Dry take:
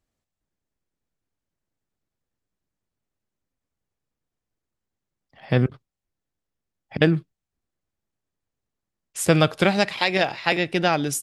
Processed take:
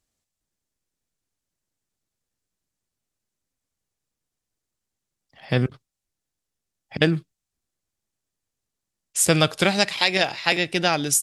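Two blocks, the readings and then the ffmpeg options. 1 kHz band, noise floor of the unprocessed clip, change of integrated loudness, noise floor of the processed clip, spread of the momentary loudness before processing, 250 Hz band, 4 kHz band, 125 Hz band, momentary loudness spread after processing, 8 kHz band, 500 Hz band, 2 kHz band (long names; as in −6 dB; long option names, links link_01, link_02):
−1.0 dB, below −85 dBFS, +0.5 dB, −85 dBFS, 8 LU, −2.0 dB, +4.5 dB, −2.0 dB, 10 LU, +8.0 dB, −1.5 dB, +1.0 dB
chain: -af "equalizer=frequency=8000:width_type=o:width=2.4:gain=10.5,volume=-2dB"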